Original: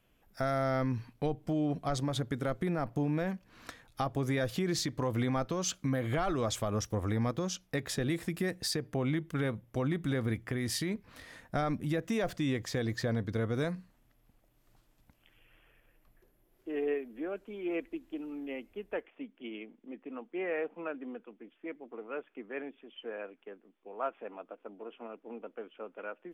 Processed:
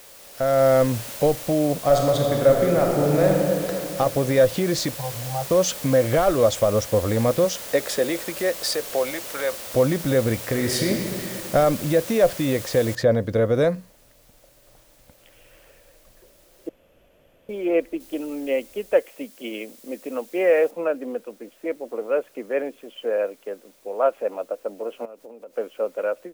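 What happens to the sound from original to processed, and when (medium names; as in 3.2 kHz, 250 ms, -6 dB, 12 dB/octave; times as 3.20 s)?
1.84–3.69 s: reverb throw, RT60 2.6 s, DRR -1 dB
4.96–5.51 s: two resonant band-passes 330 Hz, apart 2.5 oct
7.44–9.68 s: high-pass 230 Hz -> 860 Hz
10.39–10.92 s: reverb throw, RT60 2.5 s, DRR 1.5 dB
12.95 s: noise floor step -44 dB -67 dB
16.69–17.49 s: room tone
18.00–20.71 s: treble shelf 3.1 kHz +10 dB
25.05–25.56 s: compression 10:1, threshold -53 dBFS
whole clip: peaking EQ 550 Hz +14 dB 0.51 oct; level rider gain up to 12 dB; trim -3.5 dB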